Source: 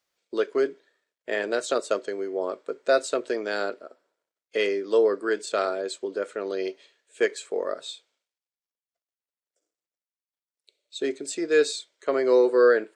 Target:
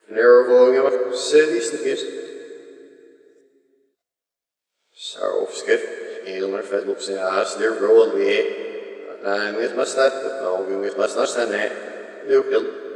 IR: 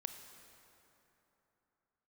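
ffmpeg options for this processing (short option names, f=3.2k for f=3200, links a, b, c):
-filter_complex "[0:a]areverse,asplit=2[a][b];[1:a]atrim=start_sample=2205,adelay=20[c];[b][c]afir=irnorm=-1:irlink=0,volume=7dB[d];[a][d]amix=inputs=2:normalize=0"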